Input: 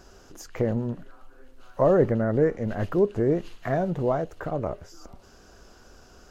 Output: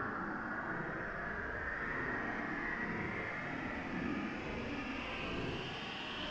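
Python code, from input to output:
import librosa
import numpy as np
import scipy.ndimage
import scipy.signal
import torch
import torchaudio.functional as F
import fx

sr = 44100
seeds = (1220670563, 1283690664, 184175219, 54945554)

y = fx.cycle_switch(x, sr, every=3, mode='inverted')
y = y * np.sin(2.0 * np.pi * 260.0 * np.arange(len(y)) / sr)
y = fx.filter_lfo_lowpass(y, sr, shape='saw_up', hz=0.67, low_hz=310.0, high_hz=4300.0, q=6.0)
y = fx.paulstretch(y, sr, seeds[0], factor=15.0, window_s=0.05, from_s=5.35)
y = y * librosa.db_to_amplitude(11.5)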